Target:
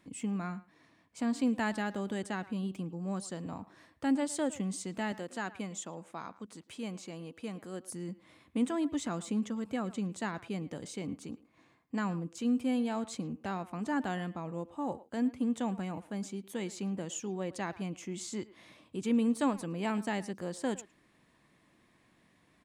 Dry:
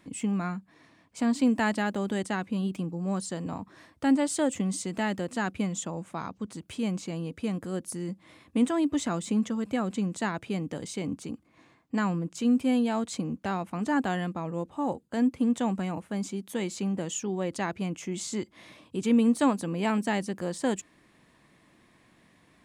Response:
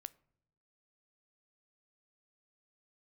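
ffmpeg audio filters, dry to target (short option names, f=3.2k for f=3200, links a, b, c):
-filter_complex "[0:a]asettb=1/sr,asplit=3[a][b][c];[a]atrim=end=5.124[d];[b]atrim=start=5.12:end=7.88,asetpts=PTS-STARTPTS,afade=t=in:d=0.004:c=qsin,afade=t=out:st=2.756:d=0.004:c=qsin,highpass=f=290:p=1[e];[c]atrim=start=7.876[f];[d][e]acrossfade=d=0.004:c1=hsin:c2=qsin[g];[g][f]acrossfade=d=0.004:c1=qsin:c2=hsin,asplit=2[h][i];[i]adelay=110,highpass=300,lowpass=3.4k,asoftclip=type=hard:threshold=-19.5dB,volume=-17dB[j];[h][j]amix=inputs=2:normalize=0,volume=-6dB"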